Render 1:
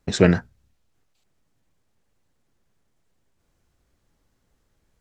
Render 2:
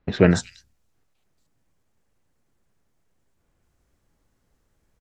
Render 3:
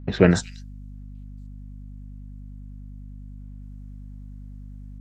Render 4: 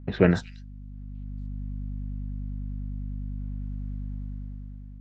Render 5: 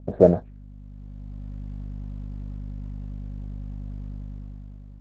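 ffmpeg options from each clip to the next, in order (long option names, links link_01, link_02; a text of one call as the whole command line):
ffmpeg -i in.wav -filter_complex "[0:a]acrossover=split=3800[link_01][link_02];[link_02]adelay=230[link_03];[link_01][link_03]amix=inputs=2:normalize=0" out.wav
ffmpeg -i in.wav -af "aeval=exprs='val(0)+0.0126*(sin(2*PI*50*n/s)+sin(2*PI*2*50*n/s)/2+sin(2*PI*3*50*n/s)/3+sin(2*PI*4*50*n/s)/4+sin(2*PI*5*50*n/s)/5)':channel_layout=same" out.wav
ffmpeg -i in.wav -af "lowpass=3500,dynaudnorm=framelen=230:gausssize=7:maxgain=10dB,volume=-3.5dB" out.wav
ffmpeg -i in.wav -af "lowpass=frequency=620:width_type=q:width=4.9,volume=-1dB" -ar 48000 -c:a libopus -b:a 10k out.opus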